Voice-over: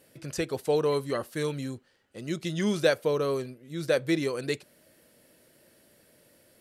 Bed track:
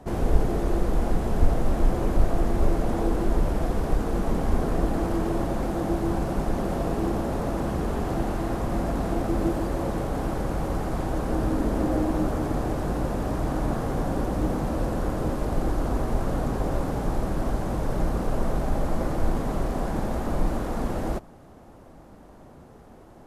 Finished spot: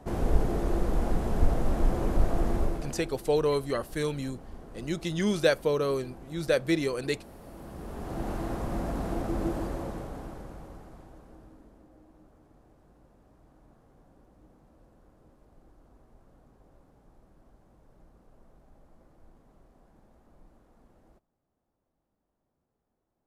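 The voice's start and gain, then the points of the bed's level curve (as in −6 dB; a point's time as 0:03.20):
2.60 s, 0.0 dB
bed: 0:02.55 −3.5 dB
0:03.20 −21.5 dB
0:07.40 −21.5 dB
0:08.31 −5.5 dB
0:09.63 −5.5 dB
0:11.89 −33 dB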